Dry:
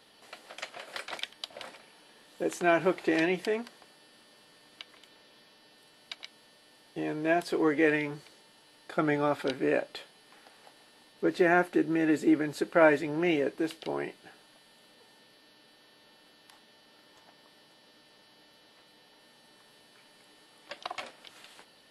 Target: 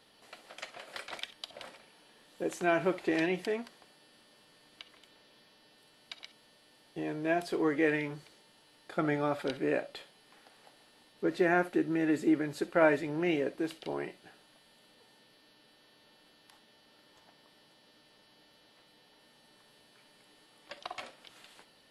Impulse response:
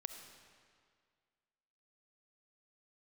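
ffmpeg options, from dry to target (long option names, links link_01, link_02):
-filter_complex "[0:a]lowshelf=frequency=150:gain=5[link_01];[1:a]atrim=start_sample=2205,atrim=end_sample=3087[link_02];[link_01][link_02]afir=irnorm=-1:irlink=0"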